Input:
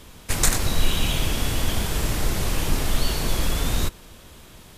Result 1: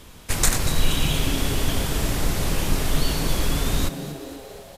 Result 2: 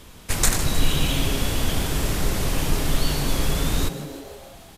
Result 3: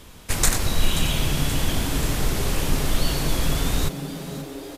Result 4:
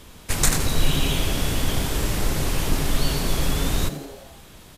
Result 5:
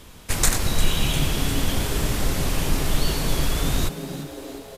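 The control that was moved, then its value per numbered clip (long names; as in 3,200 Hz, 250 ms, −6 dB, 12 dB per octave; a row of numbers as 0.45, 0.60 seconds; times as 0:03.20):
echo with shifted repeats, delay time: 237, 156, 531, 84, 351 milliseconds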